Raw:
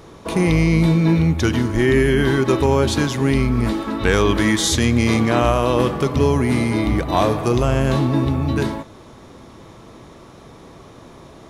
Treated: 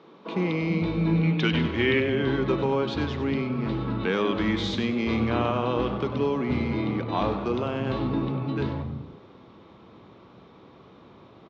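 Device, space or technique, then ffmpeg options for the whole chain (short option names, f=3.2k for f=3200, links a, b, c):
frequency-shifting delay pedal into a guitar cabinet: -filter_complex "[0:a]asettb=1/sr,asplit=3[a][b][c];[a]atrim=end=1.234[d];[b]atrim=start=1.23:end=2,asetpts=PTS-STARTPTS,afade=t=in:d=0.004:c=qsin,afade=t=out:st=0.766:d=0.004:c=qsin,equalizer=f=2.6k:w=0.87:g=11[e];[c]atrim=start=1.996[f];[d][e]acrossfade=d=0.004:c1=hsin:c2=qsin[g];[g][f]acrossfade=d=0.004:c1=qsin:c2=hsin,acrossover=split=170[h][i];[h]adelay=340[j];[j][i]amix=inputs=2:normalize=0,asplit=5[k][l][m][n][o];[l]adelay=97,afreqshift=140,volume=-12dB[p];[m]adelay=194,afreqshift=280,volume=-20.9dB[q];[n]adelay=291,afreqshift=420,volume=-29.7dB[r];[o]adelay=388,afreqshift=560,volume=-38.6dB[s];[k][p][q][r][s]amix=inputs=5:normalize=0,highpass=91,equalizer=f=190:t=q:w=4:g=5,equalizer=f=650:t=q:w=4:g=-4,equalizer=f=1.8k:t=q:w=4:g=-5,lowpass=f=3.9k:w=0.5412,lowpass=f=3.9k:w=1.3066,volume=-7.5dB"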